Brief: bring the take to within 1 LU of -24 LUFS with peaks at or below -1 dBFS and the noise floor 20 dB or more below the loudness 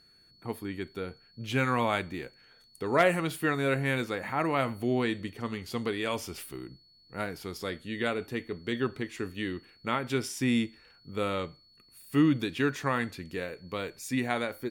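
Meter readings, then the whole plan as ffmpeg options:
steady tone 4400 Hz; tone level -59 dBFS; loudness -31.0 LUFS; peak -12.0 dBFS; loudness target -24.0 LUFS
-> -af "bandreject=f=4.4k:w=30"
-af "volume=7dB"

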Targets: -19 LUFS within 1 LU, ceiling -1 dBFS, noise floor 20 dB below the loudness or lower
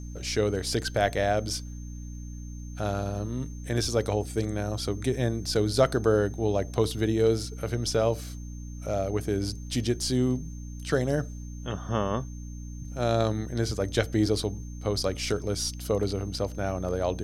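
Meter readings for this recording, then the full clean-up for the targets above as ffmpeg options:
hum 60 Hz; harmonics up to 300 Hz; hum level -36 dBFS; steady tone 6300 Hz; tone level -52 dBFS; loudness -28.5 LUFS; peak -9.0 dBFS; loudness target -19.0 LUFS
-> -af "bandreject=f=60:t=h:w=6,bandreject=f=120:t=h:w=6,bandreject=f=180:t=h:w=6,bandreject=f=240:t=h:w=6,bandreject=f=300:t=h:w=6"
-af "bandreject=f=6.3k:w=30"
-af "volume=9.5dB,alimiter=limit=-1dB:level=0:latency=1"

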